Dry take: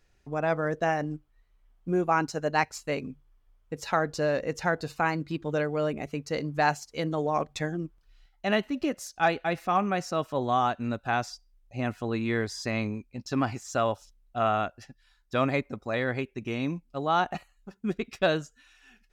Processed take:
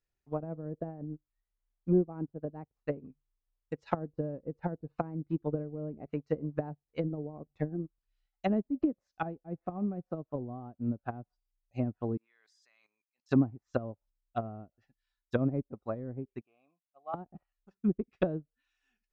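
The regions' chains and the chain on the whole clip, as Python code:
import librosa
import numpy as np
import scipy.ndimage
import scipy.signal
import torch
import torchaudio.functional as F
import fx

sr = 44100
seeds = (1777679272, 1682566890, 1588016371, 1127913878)

y = fx.chain(x, sr, fx.highpass(hz=1100.0, slope=12),
    fx.level_steps(step_db=16), at=(12.17, 13.29))
y = fx.chain(y, sr, fx.vowel_filter(vowel='a'),
    fx.high_shelf(hz=3300.0, db=-11.5), at=(16.41, 17.14))
y = fx.env_lowpass_down(y, sr, base_hz=320.0, full_db=-25.5)
y = fx.upward_expand(y, sr, threshold_db=-44.0, expansion=2.5)
y = F.gain(torch.from_numpy(y), 5.5).numpy()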